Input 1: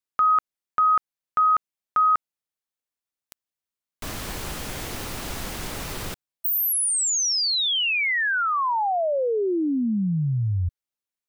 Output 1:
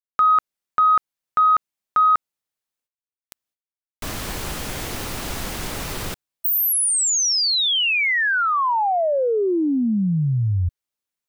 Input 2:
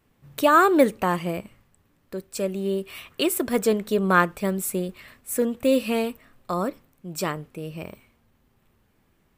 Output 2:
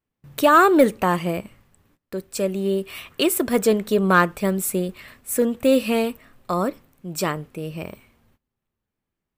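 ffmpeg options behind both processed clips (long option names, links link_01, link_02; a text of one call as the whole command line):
ffmpeg -i in.wav -af "agate=range=-22dB:threshold=-52dB:ratio=16:release=350:detection=rms,acontrast=38,volume=-2dB" out.wav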